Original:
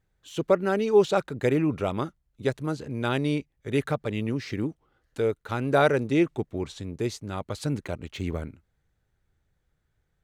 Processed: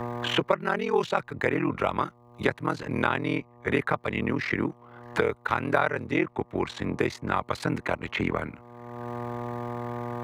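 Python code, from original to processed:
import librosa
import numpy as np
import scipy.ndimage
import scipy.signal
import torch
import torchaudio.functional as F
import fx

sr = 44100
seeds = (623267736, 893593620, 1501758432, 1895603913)

y = scipy.signal.sosfilt(scipy.signal.butter(2, 57.0, 'highpass', fs=sr, output='sos'), x)
y = y * np.sin(2.0 * np.pi * 21.0 * np.arange(len(y)) / sr)
y = fx.graphic_eq_10(y, sr, hz=(1000, 2000, 8000), db=(11, 10, -4))
y = fx.dmg_buzz(y, sr, base_hz=120.0, harmonics=10, level_db=-60.0, tilt_db=-3, odd_only=False)
y = fx.band_squash(y, sr, depth_pct=100)
y = y * 10.0 ** (-1.5 / 20.0)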